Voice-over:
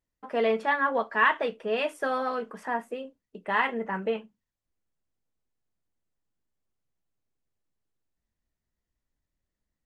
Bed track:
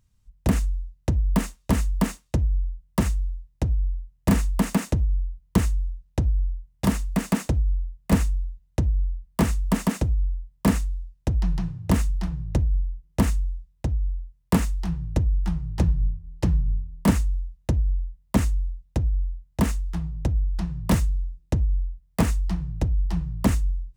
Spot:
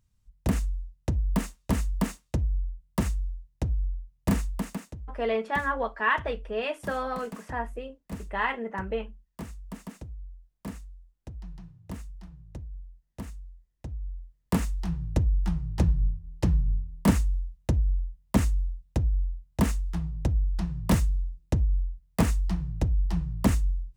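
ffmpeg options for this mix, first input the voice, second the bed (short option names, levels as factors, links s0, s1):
-filter_complex "[0:a]adelay=4850,volume=0.75[s0];[1:a]volume=3.76,afade=t=out:st=4.26:d=0.64:silence=0.211349,afade=t=in:st=13.63:d=1.46:silence=0.158489[s1];[s0][s1]amix=inputs=2:normalize=0"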